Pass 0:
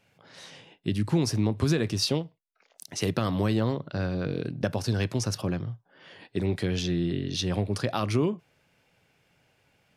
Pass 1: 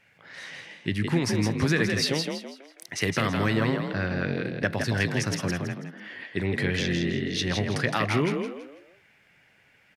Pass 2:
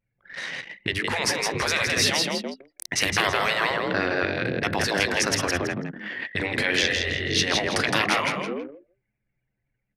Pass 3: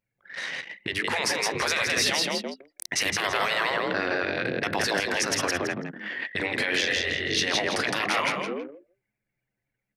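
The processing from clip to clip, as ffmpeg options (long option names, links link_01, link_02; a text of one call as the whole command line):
ffmpeg -i in.wav -filter_complex "[0:a]equalizer=frequency=1900:width=1.7:gain=14,asplit=2[link_01][link_02];[link_02]asplit=4[link_03][link_04][link_05][link_06];[link_03]adelay=164,afreqshift=46,volume=-5dB[link_07];[link_04]adelay=328,afreqshift=92,volume=-14.4dB[link_08];[link_05]adelay=492,afreqshift=138,volume=-23.7dB[link_09];[link_06]adelay=656,afreqshift=184,volume=-33.1dB[link_10];[link_07][link_08][link_09][link_10]amix=inputs=4:normalize=0[link_11];[link_01][link_11]amix=inputs=2:normalize=0,volume=-1dB" out.wav
ffmpeg -i in.wav -af "bandreject=frequency=50:width_type=h:width=6,bandreject=frequency=100:width_type=h:width=6,bandreject=frequency=150:width_type=h:width=6,bandreject=frequency=200:width_type=h:width=6,anlmdn=0.158,afftfilt=real='re*lt(hypot(re,im),0.158)':imag='im*lt(hypot(re,im),0.158)':win_size=1024:overlap=0.75,volume=8.5dB" out.wav
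ffmpeg -i in.wav -af "lowshelf=frequency=140:gain=-11.5,alimiter=limit=-14dB:level=0:latency=1:release=28" out.wav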